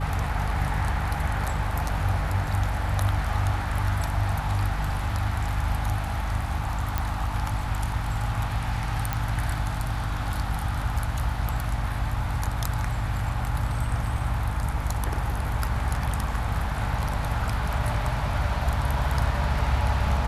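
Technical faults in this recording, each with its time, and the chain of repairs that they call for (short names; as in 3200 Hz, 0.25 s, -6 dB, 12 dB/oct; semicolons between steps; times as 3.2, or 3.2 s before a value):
hum 50 Hz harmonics 6 -30 dBFS
6.98 pop -12 dBFS
9.13 pop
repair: de-click; de-hum 50 Hz, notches 6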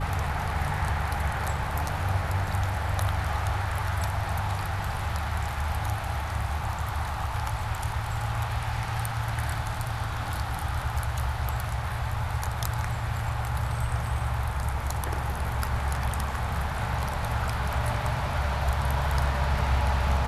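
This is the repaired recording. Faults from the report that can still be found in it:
none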